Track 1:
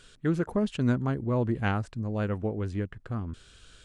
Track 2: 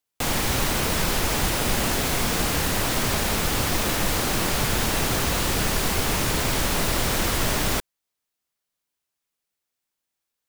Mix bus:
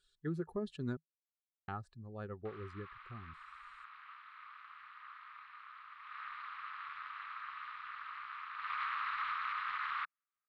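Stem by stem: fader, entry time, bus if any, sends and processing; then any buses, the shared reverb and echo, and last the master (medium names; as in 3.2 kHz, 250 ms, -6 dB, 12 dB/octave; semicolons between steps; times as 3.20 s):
-14.5 dB, 0.00 s, muted 0.97–1.68 s, no send, expander on every frequency bin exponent 1.5; small resonant body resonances 380/1700 Hz, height 12 dB
5.97 s -21.5 dB -> 6.20 s -14 dB -> 8.54 s -14 dB -> 8.77 s -2 dB, 2.25 s, no send, low-pass 2.2 kHz 24 dB/octave; AM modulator 240 Hz, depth 100%; elliptic high-pass 1.1 kHz, stop band 40 dB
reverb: none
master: graphic EQ with 31 bands 160 Hz +7 dB, 800 Hz +7 dB, 1.25 kHz +10 dB, 4 kHz +8 dB, 6.3 kHz -4 dB; peak limiter -29 dBFS, peak gain reduction 8.5 dB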